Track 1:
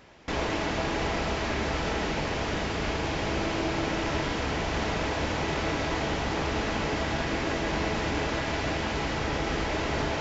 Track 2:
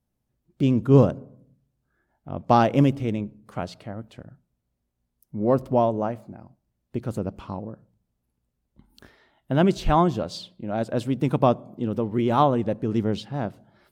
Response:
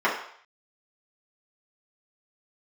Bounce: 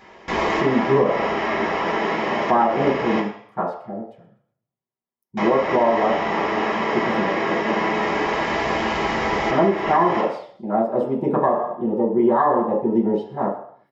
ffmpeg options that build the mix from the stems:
-filter_complex "[0:a]volume=0.944,asplit=3[s0][s1][s2];[s0]atrim=end=3.2,asetpts=PTS-STARTPTS,afade=t=out:st=3.196:d=0.004:c=hsin[s3];[s1]atrim=start=3.2:end=5.37,asetpts=PTS-STARTPTS,volume=0[s4];[s2]atrim=start=5.37,asetpts=PTS-STARTPTS,afade=t=in:d=0.004:c=hsin[s5];[s3][s4][s5]concat=n=3:v=0:a=1,asplit=2[s6][s7];[s7]volume=0.398[s8];[1:a]afwtdn=0.0398,highpass=f=220:p=1,volume=0.631,asplit=4[s9][s10][s11][s12];[s10]volume=0.668[s13];[s11]volume=0.158[s14];[s12]apad=whole_len=450223[s15];[s6][s15]sidechaincompress=threshold=0.00794:ratio=8:attack=16:release=1340[s16];[2:a]atrim=start_sample=2205[s17];[s8][s13]amix=inputs=2:normalize=0[s18];[s18][s17]afir=irnorm=-1:irlink=0[s19];[s14]aecho=0:1:124|248|372|496|620|744:1|0.44|0.194|0.0852|0.0375|0.0165[s20];[s16][s9][s19][s20]amix=inputs=4:normalize=0,bandreject=f=1500:w=8.1,alimiter=limit=0.398:level=0:latency=1:release=227"

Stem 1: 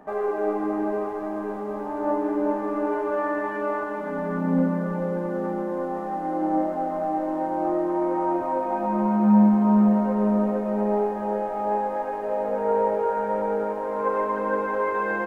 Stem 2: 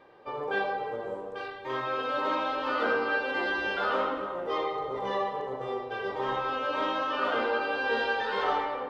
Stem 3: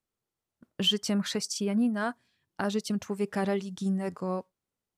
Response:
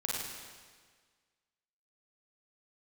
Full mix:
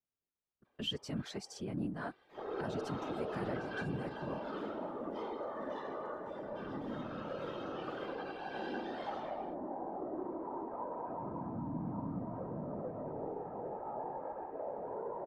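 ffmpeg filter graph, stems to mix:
-filter_complex "[0:a]lowpass=1200,equalizer=f=160:t=o:w=0.61:g=-11,alimiter=limit=0.0891:level=0:latency=1:release=10,adelay=2300,volume=0.422[s0];[1:a]highshelf=f=5200:g=12,adelay=650,volume=0.473,afade=t=in:st=2.46:d=0.41:silence=0.281838,afade=t=out:st=3.72:d=0.48:silence=0.446684[s1];[2:a]highshelf=f=5800:g=-10,volume=0.562,asplit=2[s2][s3];[s3]apad=whole_len=421116[s4];[s1][s4]sidechaincompress=threshold=0.01:ratio=4:attack=12:release=293[s5];[s0][s5][s2]amix=inputs=3:normalize=0,afftfilt=real='hypot(re,im)*cos(2*PI*random(0))':imag='hypot(re,im)*sin(2*PI*random(1))':win_size=512:overlap=0.75"

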